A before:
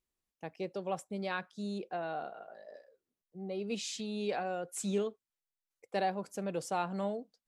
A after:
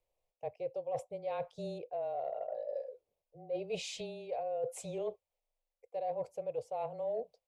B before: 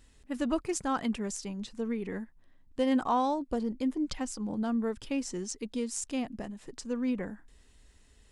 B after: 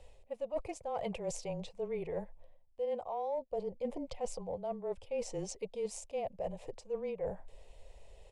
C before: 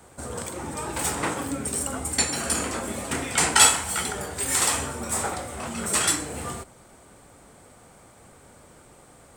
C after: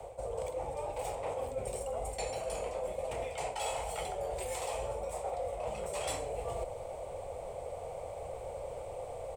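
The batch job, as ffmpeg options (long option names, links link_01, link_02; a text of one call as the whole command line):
ffmpeg -i in.wav -af "acontrast=67,firequalizer=gain_entry='entry(110,0);entry(250,-18);entry(350,-12);entry(540,12);entry(1800,-18);entry(5800,-21)':delay=0.05:min_phase=1,afreqshift=-23,areverse,acompressor=threshold=-35dB:ratio=8,areverse,highshelf=frequency=1800:width_type=q:width=3:gain=8,volume=1dB" out.wav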